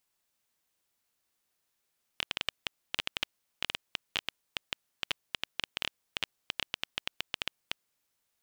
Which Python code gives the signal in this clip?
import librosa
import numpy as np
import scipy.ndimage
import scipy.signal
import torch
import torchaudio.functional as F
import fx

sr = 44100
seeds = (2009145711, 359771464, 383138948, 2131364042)

y = fx.geiger_clicks(sr, seeds[0], length_s=5.66, per_s=9.2, level_db=-12.0)